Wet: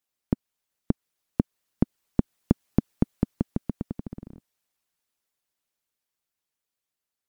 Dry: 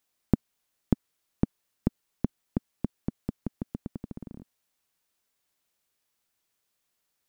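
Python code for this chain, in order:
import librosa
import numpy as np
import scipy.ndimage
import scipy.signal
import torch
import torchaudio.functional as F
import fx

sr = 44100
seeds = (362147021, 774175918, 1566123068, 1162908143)

y = fx.doppler_pass(x, sr, speed_mps=9, closest_m=6.8, pass_at_s=2.92)
y = fx.hpss(y, sr, part='percussive', gain_db=9)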